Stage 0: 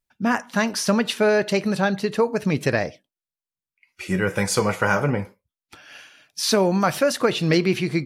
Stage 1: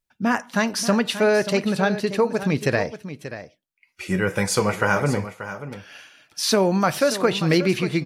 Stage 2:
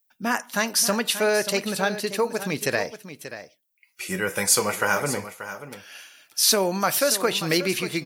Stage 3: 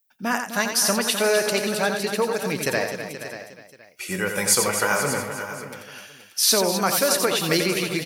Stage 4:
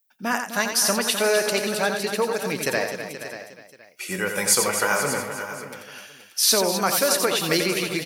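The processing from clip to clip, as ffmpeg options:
-af "aecho=1:1:584:0.237"
-af "aemphasis=mode=production:type=bsi,volume=-2dB"
-af "aecho=1:1:87|255|477:0.473|0.316|0.237"
-af "lowshelf=f=97:g=-10.5"

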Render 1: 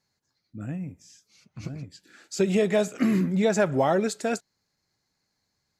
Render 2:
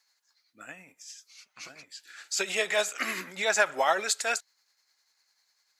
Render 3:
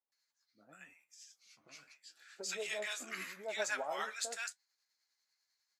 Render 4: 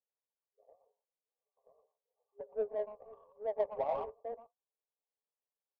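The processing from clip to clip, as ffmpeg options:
-af "highpass=1.2k,tremolo=f=10:d=0.41,volume=9dB"
-filter_complex "[0:a]flanger=delay=7.2:depth=7.6:regen=55:speed=0.87:shape=triangular,acrossover=split=920[a][b];[b]adelay=120[c];[a][c]amix=inputs=2:normalize=0,volume=-7dB"
-af "afftfilt=real='re*between(b*sr/4096,400,1200)':imag='im*between(b*sr/4096,400,1200)':win_size=4096:overlap=0.75,adynamicsmooth=sensitivity=6.5:basefreq=560,tiltshelf=f=820:g=7,volume=5dB"

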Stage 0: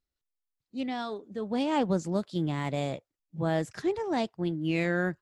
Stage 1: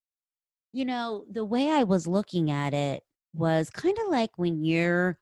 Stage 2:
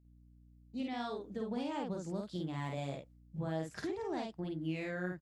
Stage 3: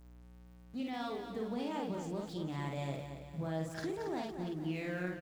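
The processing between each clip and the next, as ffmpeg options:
-af "agate=range=-33dB:threshold=-52dB:ratio=3:detection=peak,volume=3.5dB"
-filter_complex "[0:a]aeval=exprs='val(0)+0.00112*(sin(2*PI*60*n/s)+sin(2*PI*2*60*n/s)/2+sin(2*PI*3*60*n/s)/3+sin(2*PI*4*60*n/s)/4+sin(2*PI*5*60*n/s)/5)':c=same,acompressor=threshold=-32dB:ratio=6,asplit=2[a][b];[b]adelay=50,volume=-2.5dB[c];[a][c]amix=inputs=2:normalize=0,volume=-5.5dB"
-af "aeval=exprs='val(0)+0.5*0.00237*sgn(val(0))':c=same,aecho=1:1:228|456|684|912|1140|1368:0.376|0.184|0.0902|0.0442|0.0217|0.0106,volume=-1dB"

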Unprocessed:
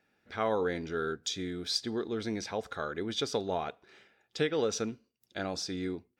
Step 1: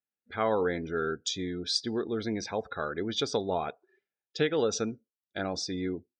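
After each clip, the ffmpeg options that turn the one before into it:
-af "afftdn=nr=32:nf=-47,volume=2.5dB"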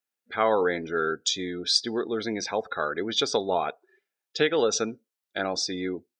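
-af "highpass=f=410:p=1,volume=6.5dB"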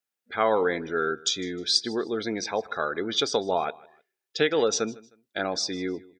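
-af "aecho=1:1:155|310:0.0794|0.0238"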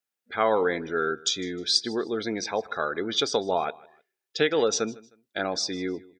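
-af anull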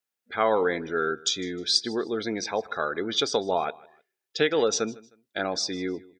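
-af "aeval=exprs='0.422*(cos(1*acos(clip(val(0)/0.422,-1,1)))-cos(1*PI/2))+0.00473*(cos(2*acos(clip(val(0)/0.422,-1,1)))-cos(2*PI/2))':c=same"

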